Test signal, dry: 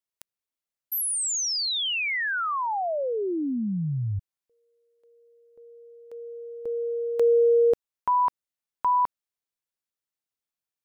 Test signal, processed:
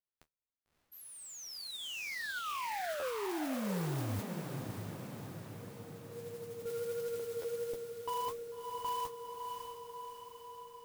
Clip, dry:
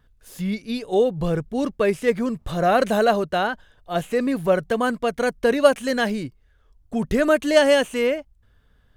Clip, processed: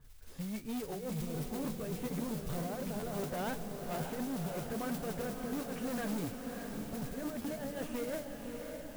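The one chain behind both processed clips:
low-pass filter 1,500 Hz 6 dB per octave
low-shelf EQ 160 Hz +8 dB
compressor whose output falls as the input rises −23 dBFS, ratio −0.5
flanger 1.4 Hz, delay 6.4 ms, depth 9.2 ms, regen +43%
noise that follows the level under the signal 13 dB
soft clipping −29 dBFS
feedback delay with all-pass diffusion 603 ms, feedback 63%, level −5.5 dB
buffer that repeats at 0:02.99/0:07.41, samples 512, times 2
level −5.5 dB

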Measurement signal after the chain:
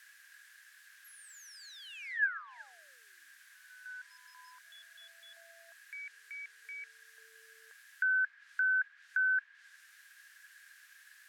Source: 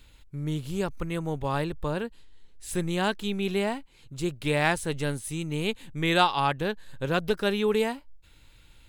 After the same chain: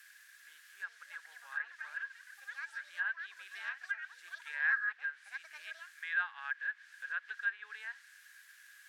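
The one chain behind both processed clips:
delay with pitch and tempo change per echo 574 ms, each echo +7 semitones, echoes 3, each echo −6 dB
high-shelf EQ 2,100 Hz −10 dB
in parallel at −9 dB: bit-depth reduction 6 bits, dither triangular
on the sum: four-pole ladder high-pass 1,600 Hz, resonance 90%
treble cut that deepens with the level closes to 2,300 Hz, closed at −29.5 dBFS
level −4 dB

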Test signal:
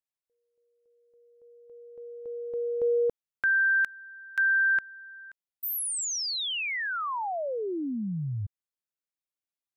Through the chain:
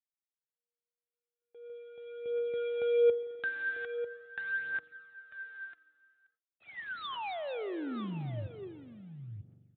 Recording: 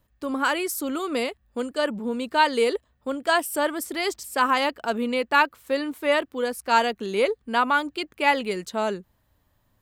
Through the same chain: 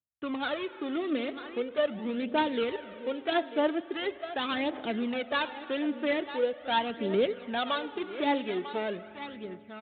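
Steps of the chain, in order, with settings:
gap after every zero crossing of 0.18 ms
high-pass filter 81 Hz 24 dB per octave
spring reverb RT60 2.3 s, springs 42 ms, chirp 40 ms, DRR 14.5 dB
noise gate with hold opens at −48 dBFS, hold 71 ms, range −35 dB
on a send: single-tap delay 946 ms −14 dB
on the sum: phase shifter 0.42 Hz, delay 3.5 ms, feedback 53%
downsampling to 8,000 Hz
notch filter 1,000 Hz, Q 6.9
dynamic equaliser 1,300 Hz, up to −5 dB, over −38 dBFS, Q 1.5
in parallel at −2 dB: downward compressor, threshold −30 dBFS
on the sum: level −7.5 dB

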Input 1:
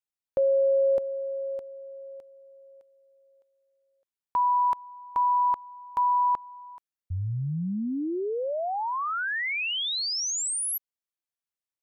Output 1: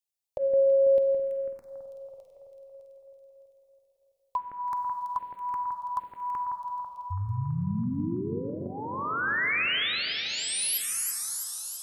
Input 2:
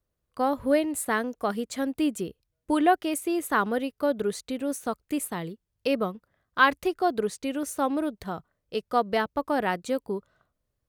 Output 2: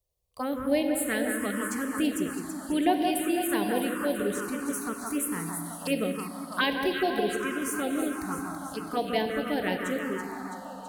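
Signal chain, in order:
high-shelf EQ 2,500 Hz +6 dB
delay that swaps between a low-pass and a high-pass 165 ms, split 2,000 Hz, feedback 77%, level −5 dB
four-comb reverb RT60 3.8 s, combs from 32 ms, DRR 5.5 dB
phaser swept by the level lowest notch 250 Hz, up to 1,300 Hz, full sweep at −18 dBFS
level −1.5 dB

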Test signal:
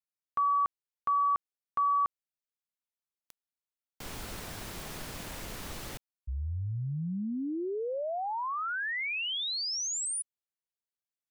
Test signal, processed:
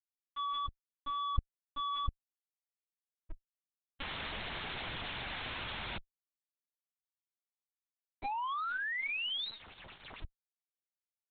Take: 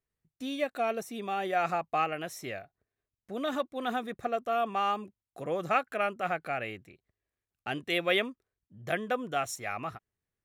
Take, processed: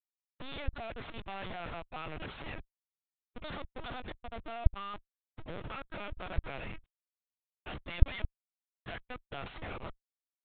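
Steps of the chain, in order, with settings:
pitch vibrato 3.5 Hz 5.9 cents
first difference
comparator with hysteresis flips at −49.5 dBFS
linear-prediction vocoder at 8 kHz pitch kept
level +8.5 dB

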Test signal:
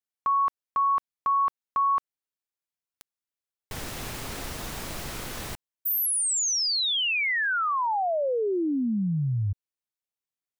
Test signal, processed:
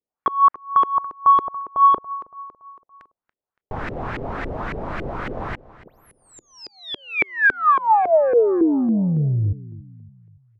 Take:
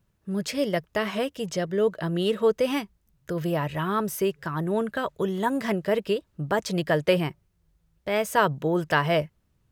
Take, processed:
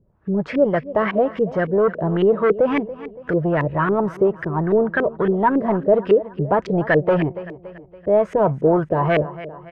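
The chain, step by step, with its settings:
repeating echo 283 ms, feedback 48%, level −19 dB
soft clipping −21 dBFS
auto-filter low-pass saw up 3.6 Hz 380–2,100 Hz
level +7.5 dB

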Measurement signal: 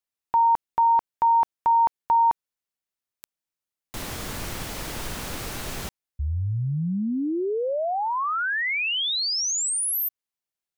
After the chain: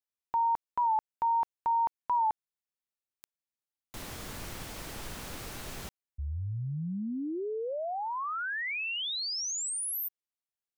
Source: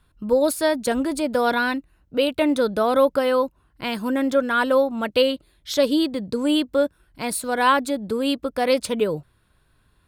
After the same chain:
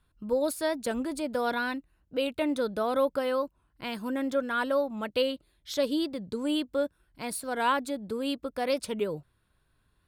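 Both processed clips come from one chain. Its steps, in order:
wow of a warped record 45 rpm, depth 100 cents
level −8.5 dB

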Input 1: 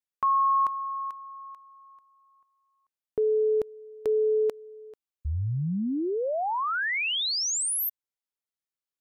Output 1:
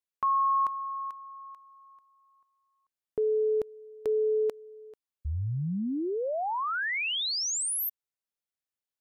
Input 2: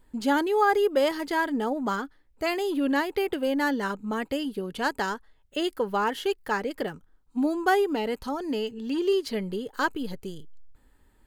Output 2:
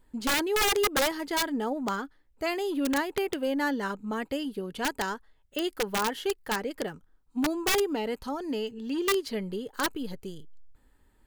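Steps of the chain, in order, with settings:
wrap-around overflow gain 17 dB
level −2.5 dB

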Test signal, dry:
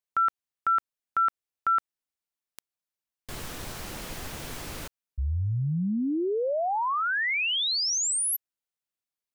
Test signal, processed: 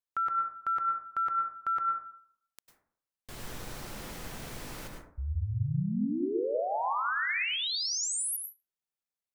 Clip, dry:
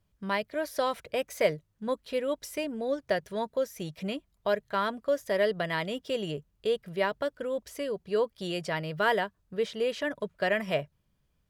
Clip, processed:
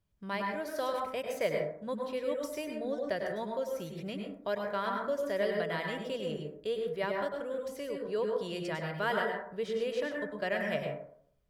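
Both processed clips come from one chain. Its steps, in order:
dense smooth reverb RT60 0.61 s, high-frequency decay 0.35×, pre-delay 90 ms, DRR 1 dB
level −6.5 dB

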